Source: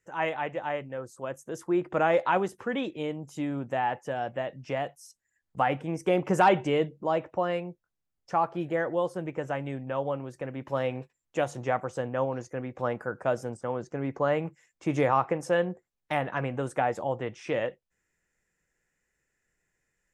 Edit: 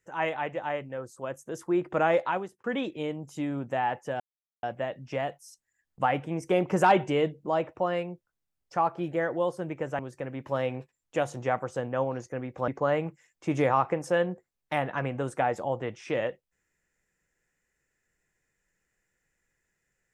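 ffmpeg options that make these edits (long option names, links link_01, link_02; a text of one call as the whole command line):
ffmpeg -i in.wav -filter_complex "[0:a]asplit=5[link_01][link_02][link_03][link_04][link_05];[link_01]atrim=end=2.64,asetpts=PTS-STARTPTS,afade=type=out:start_time=2.13:duration=0.51[link_06];[link_02]atrim=start=2.64:end=4.2,asetpts=PTS-STARTPTS,afade=type=in:duration=0.004:curve=hsin,afade=type=out:start_time=1.556:duration=0.004:curve=hsin,apad=pad_dur=0.43[link_07];[link_03]atrim=start=4.2:end=9.562,asetpts=PTS-STARTPTS,afade=type=in:duration=0.004:curve=hsin[link_08];[link_04]atrim=start=10.198:end=12.892[link_09];[link_05]atrim=start=14.068[link_10];[link_06][link_07][link_08]concat=n=3:v=0:a=1[link_11];[link_11][link_09]acrossfade=duration=0.004:curve1=hsin:curve2=hsin[link_12];[link_12][link_10]acrossfade=duration=0.004:curve1=hsin:curve2=hsin" out.wav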